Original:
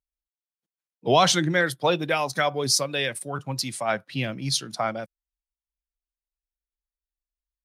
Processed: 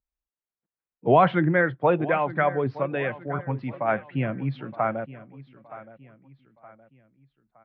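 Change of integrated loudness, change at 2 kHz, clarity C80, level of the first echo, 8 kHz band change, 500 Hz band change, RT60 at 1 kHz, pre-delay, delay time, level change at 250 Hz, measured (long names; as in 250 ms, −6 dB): −0.5 dB, −1.0 dB, no reverb audible, −17.0 dB, below −40 dB, +2.0 dB, no reverb audible, no reverb audible, 919 ms, +2.5 dB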